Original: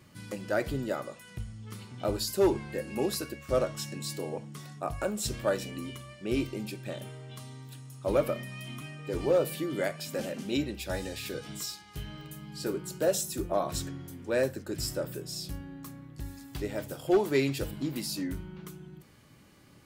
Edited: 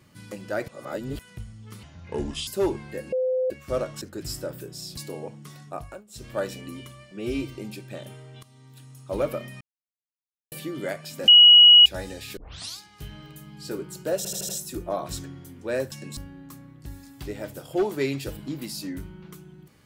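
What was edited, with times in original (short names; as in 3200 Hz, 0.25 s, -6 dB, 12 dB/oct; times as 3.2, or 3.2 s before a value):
0.68–1.19 reverse
1.83–2.28 speed 70%
2.93–3.31 bleep 513 Hz -21 dBFS
3.82–4.07 swap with 14.55–15.51
4.81–5.5 dip -22.5 dB, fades 0.33 s
6.21–6.5 stretch 1.5×
7.38–7.87 fade in, from -14.5 dB
8.56–9.47 mute
10.23–10.81 bleep 2910 Hz -8 dBFS
11.32 tape start 0.42 s
13.12 stutter 0.08 s, 5 plays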